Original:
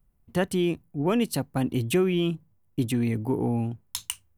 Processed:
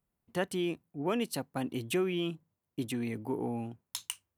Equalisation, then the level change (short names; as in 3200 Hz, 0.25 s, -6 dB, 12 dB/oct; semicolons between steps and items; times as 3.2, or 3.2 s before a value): HPF 320 Hz 6 dB/oct; high shelf 9600 Hz -3.5 dB; -4.5 dB